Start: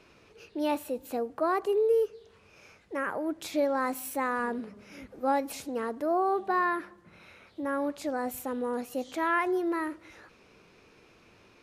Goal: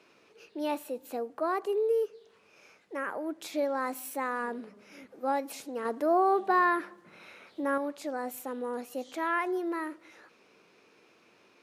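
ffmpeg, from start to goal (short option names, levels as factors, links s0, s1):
-filter_complex "[0:a]highpass=230,asettb=1/sr,asplit=3[s0][s1][s2];[s0]atrim=end=5.854[s3];[s1]atrim=start=5.85:end=7.78,asetpts=PTS-STARTPTS,afade=t=in:d=0.004:c=qsin,afade=t=out:st=1.926:d=0.004:c=qsin,acontrast=28[s4];[s2]atrim=start=7.776[s5];[s3][s4]acrossfade=d=0.004:c1=hsin:c2=qsin[s6];[s6][s5]acrossfade=d=0.004:c1=qsin:c2=hsin,volume=0.75"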